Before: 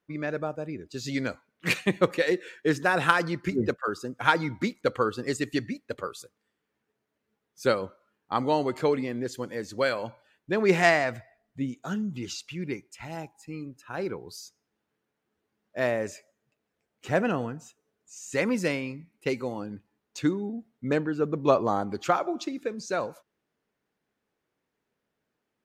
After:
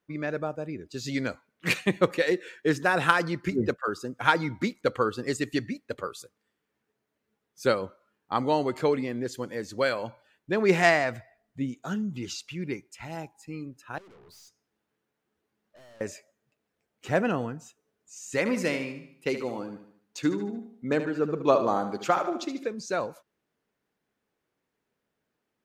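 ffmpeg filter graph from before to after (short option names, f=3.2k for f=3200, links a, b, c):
-filter_complex "[0:a]asettb=1/sr,asplit=3[a][b][c];[a]atrim=end=13.984[d];[b]atrim=start=13.98:end=16.01,asetpts=PTS-STARTPTS,afade=t=in:d=0.004:c=qsin,afade=t=out:st=2.026:d=0.004:c=qsin,bandreject=f=50:t=h:w=6,bandreject=f=100:t=h:w=6,bandreject=f=150:t=h:w=6,bandreject=f=200:t=h:w=6,bandreject=f=250:t=h:w=6,acompressor=threshold=-37dB:ratio=3:attack=3.2:release=140:knee=1:detection=peak,aeval=exprs='(tanh(398*val(0)+0.15)-tanh(0.15))/398':c=same[e];[c]atrim=start=16.006[f];[d][e]acrossfade=d=0.004:c1=hsin:c2=qsin[g];[g][f]acrossfade=d=0.004:c1=qsin:c2=hsin,asettb=1/sr,asplit=3[h][i][j];[h]atrim=end=18.384[k];[i]atrim=start=18.38:end=22.67,asetpts=PTS-STARTPTS,afade=t=in:d=0.004:c=qsin,afade=t=out:st=4.286:d=0.004:c=qsin,equalizer=f=81:w=1.3:g=-12.5,aecho=1:1:74|148|222|296|370:0.316|0.145|0.0669|0.0308|0.0142,atrim=end_sample=189189[l];[j]atrim=start=22.666[m];[k][l]acrossfade=d=0.004:c1=hsin:c2=qsin[n];[n][m]acrossfade=d=0.004:c1=qsin:c2=hsin"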